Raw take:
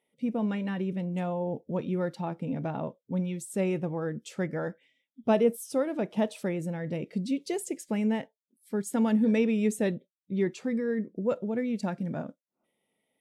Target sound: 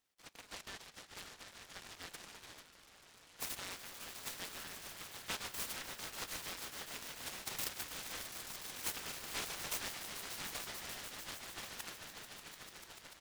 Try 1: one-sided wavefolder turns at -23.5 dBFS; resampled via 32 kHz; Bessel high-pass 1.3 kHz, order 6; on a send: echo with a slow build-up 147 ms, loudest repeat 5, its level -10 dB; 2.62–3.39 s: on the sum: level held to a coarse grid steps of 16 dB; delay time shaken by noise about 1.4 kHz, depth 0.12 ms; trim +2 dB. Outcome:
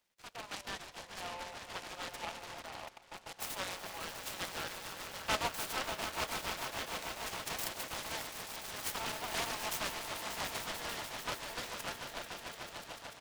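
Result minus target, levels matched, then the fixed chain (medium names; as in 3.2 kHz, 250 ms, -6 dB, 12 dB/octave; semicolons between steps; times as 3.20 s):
1 kHz band +6.0 dB
one-sided wavefolder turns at -23.5 dBFS; resampled via 32 kHz; Bessel high-pass 2.8 kHz, order 6; on a send: echo with a slow build-up 147 ms, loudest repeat 5, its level -10 dB; 2.62–3.39 s: on the sum: level held to a coarse grid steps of 16 dB; delay time shaken by noise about 1.4 kHz, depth 0.12 ms; trim +2 dB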